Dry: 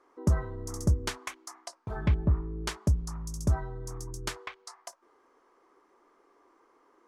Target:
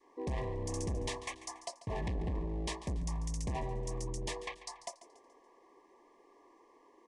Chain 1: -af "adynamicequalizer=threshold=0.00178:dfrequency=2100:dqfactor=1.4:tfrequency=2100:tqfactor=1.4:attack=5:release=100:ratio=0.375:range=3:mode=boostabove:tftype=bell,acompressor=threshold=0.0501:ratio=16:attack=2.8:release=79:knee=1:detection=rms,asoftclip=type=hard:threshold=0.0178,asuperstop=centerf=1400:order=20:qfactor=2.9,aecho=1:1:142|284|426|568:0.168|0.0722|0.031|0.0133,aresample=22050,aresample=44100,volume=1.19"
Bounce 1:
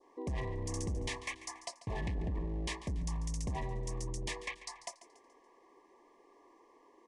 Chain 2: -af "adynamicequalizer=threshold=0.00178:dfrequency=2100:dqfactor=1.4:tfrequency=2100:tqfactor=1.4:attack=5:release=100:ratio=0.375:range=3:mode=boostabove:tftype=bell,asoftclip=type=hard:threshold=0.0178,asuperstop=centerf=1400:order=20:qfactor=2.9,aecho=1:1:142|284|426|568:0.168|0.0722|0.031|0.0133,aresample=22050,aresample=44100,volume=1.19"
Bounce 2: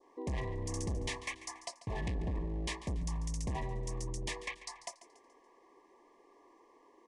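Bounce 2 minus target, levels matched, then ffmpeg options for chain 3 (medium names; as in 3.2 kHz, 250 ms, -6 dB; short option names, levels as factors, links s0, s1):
2 kHz band +3.5 dB
-af "adynamicequalizer=threshold=0.00178:dfrequency=600:dqfactor=1.4:tfrequency=600:tqfactor=1.4:attack=5:release=100:ratio=0.375:range=3:mode=boostabove:tftype=bell,asoftclip=type=hard:threshold=0.0178,asuperstop=centerf=1400:order=20:qfactor=2.9,aecho=1:1:142|284|426|568:0.168|0.0722|0.031|0.0133,aresample=22050,aresample=44100,volume=1.19"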